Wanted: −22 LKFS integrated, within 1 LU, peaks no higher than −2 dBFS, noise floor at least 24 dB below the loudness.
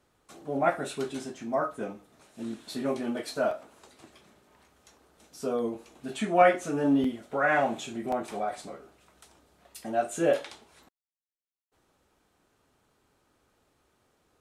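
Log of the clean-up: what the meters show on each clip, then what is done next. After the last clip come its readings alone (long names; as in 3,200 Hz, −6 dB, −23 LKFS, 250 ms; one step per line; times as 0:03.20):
number of dropouts 3; longest dropout 3.6 ms; integrated loudness −29.0 LKFS; sample peak −6.0 dBFS; target loudness −22.0 LKFS
→ repair the gap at 0:03.51/0:07.04/0:08.12, 3.6 ms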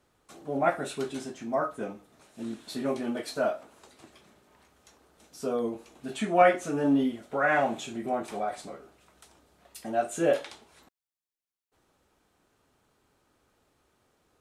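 number of dropouts 0; integrated loudness −29.0 LKFS; sample peak −6.0 dBFS; target loudness −22.0 LKFS
→ level +7 dB
brickwall limiter −2 dBFS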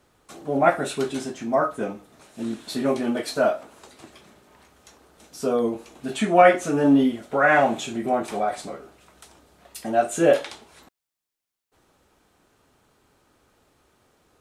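integrated loudness −22.5 LKFS; sample peak −2.0 dBFS; background noise floor −86 dBFS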